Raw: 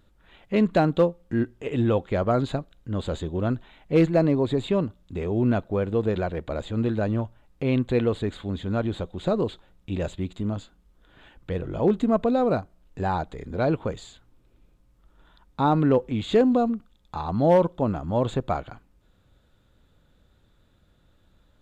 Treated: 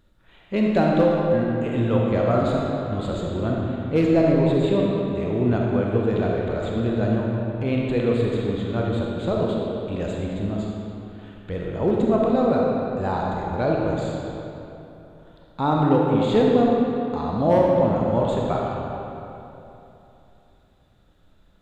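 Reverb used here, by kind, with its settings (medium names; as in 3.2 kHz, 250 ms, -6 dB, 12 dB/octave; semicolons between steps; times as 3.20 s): algorithmic reverb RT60 3.1 s, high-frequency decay 0.7×, pre-delay 5 ms, DRR -2.5 dB; trim -1.5 dB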